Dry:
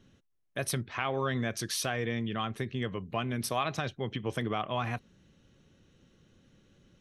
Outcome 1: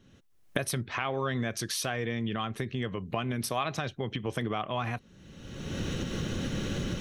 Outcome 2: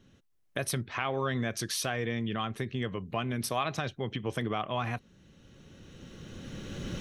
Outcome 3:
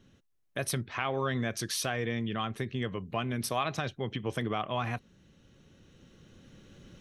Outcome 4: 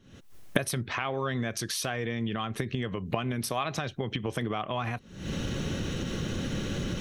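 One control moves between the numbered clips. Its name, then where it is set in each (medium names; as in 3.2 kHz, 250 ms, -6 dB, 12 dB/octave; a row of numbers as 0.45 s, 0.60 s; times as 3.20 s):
recorder AGC, rising by: 36 dB/s, 13 dB/s, 5 dB/s, 88 dB/s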